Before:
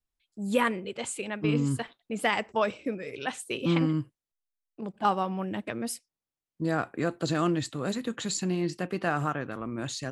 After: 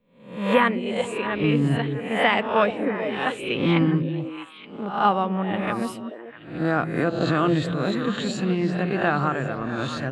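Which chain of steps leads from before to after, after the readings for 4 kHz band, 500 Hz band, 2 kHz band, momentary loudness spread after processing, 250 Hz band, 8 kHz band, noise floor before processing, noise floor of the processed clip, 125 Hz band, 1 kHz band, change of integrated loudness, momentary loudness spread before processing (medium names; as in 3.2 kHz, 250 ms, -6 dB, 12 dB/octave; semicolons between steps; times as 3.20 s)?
+5.5 dB, +7.0 dB, +7.5 dB, 11 LU, +6.5 dB, -7.0 dB, under -85 dBFS, -44 dBFS, +6.5 dB, +7.0 dB, +6.5 dB, 9 LU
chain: reverse spectral sustain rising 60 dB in 0.54 s; high-order bell 7.8 kHz -15 dB; on a send: repeats whose band climbs or falls 218 ms, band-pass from 180 Hz, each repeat 1.4 oct, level -3.5 dB; on the sum: trim +4.5 dB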